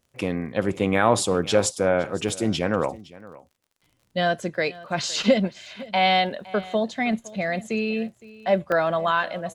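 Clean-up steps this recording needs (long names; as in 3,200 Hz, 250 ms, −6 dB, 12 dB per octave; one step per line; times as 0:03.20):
click removal
repair the gap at 0:02.29/0:03.51/0:08.21/0:08.72, 2.2 ms
echo removal 513 ms −20 dB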